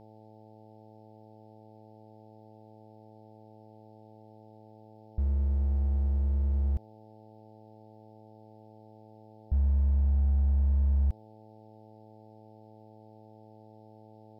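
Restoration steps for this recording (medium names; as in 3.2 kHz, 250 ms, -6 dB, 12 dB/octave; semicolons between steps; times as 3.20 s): clip repair -20.5 dBFS; de-hum 108.6 Hz, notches 8; expander -45 dBFS, range -21 dB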